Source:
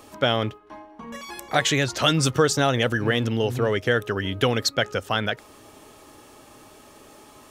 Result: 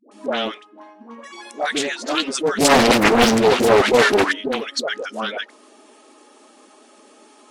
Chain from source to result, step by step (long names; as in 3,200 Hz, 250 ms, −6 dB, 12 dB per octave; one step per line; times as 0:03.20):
spectral magnitudes quantised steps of 15 dB
0:02.53–0:04.22: leveller curve on the samples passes 5
all-pass dispersion highs, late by 116 ms, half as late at 590 Hz
brick-wall band-pass 200–11,000 Hz
highs frequency-modulated by the lows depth 0.76 ms